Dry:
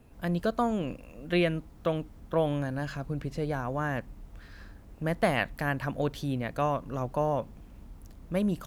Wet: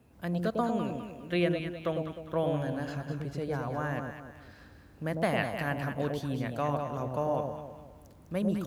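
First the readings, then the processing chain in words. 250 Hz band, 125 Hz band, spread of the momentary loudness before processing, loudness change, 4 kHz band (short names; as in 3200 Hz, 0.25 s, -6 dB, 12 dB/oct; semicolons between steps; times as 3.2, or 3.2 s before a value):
-1.5 dB, -1.5 dB, 13 LU, -2.0 dB, -2.5 dB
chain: HPF 65 Hz 24 dB/oct; on a send: echo with dull and thin repeats by turns 0.102 s, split 810 Hz, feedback 61%, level -2.5 dB; on the sum: gain -3.5 dB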